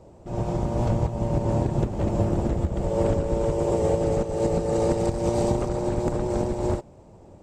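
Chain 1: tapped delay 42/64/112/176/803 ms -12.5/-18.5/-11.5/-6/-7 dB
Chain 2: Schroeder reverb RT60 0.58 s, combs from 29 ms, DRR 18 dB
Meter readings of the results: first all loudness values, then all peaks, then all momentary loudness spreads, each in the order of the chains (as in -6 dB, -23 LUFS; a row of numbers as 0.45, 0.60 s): -23.5, -25.0 LUFS; -8.0, -9.5 dBFS; 5, 3 LU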